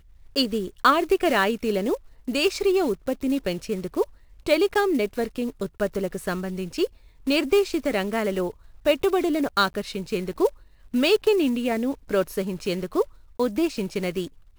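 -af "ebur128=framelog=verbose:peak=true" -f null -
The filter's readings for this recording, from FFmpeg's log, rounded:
Integrated loudness:
  I:         -24.6 LUFS
  Threshold: -34.7 LUFS
Loudness range:
  LRA:         2.8 LU
  Threshold: -44.7 LUFS
  LRA low:   -26.0 LUFS
  LRA high:  -23.2 LUFS
True peak:
  Peak:       -6.0 dBFS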